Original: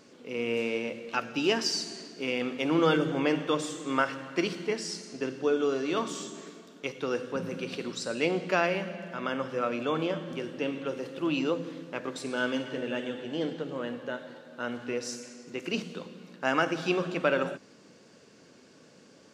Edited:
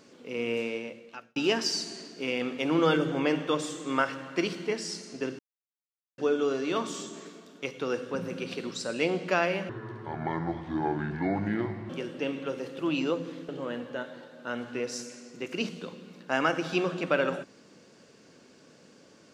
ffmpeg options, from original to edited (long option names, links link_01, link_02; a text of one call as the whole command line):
ffmpeg -i in.wav -filter_complex "[0:a]asplit=6[link_01][link_02][link_03][link_04][link_05][link_06];[link_01]atrim=end=1.36,asetpts=PTS-STARTPTS,afade=type=out:start_time=0.48:duration=0.88[link_07];[link_02]atrim=start=1.36:end=5.39,asetpts=PTS-STARTPTS,afade=type=in:duration=0.004:curve=hsin,afade=type=out:start_time=4.026:duration=0.004:curve=hsin,apad=pad_dur=0.79[link_08];[link_03]atrim=start=5.39:end=8.904,asetpts=PTS-STARTPTS,afade=type=in:duration=0.004:curve=hsin[link_09];[link_04]atrim=start=8.9:end=10.29,asetpts=PTS-STARTPTS,asetrate=27783,aresample=44100[link_10];[link_05]atrim=start=10.286:end=11.882[link_11];[link_06]atrim=start=13.618[link_12];[link_07][link_08][link_09]concat=n=3:v=0:a=1[link_13];[link_13][link_10]acrossfade=duration=0.004:curve1=hsin:curve2=hsin[link_14];[link_14][link_11]acrossfade=duration=0.004:curve1=hsin:curve2=hsin[link_15];[link_15][link_12]acrossfade=duration=0.004:curve1=hsin:curve2=hsin" out.wav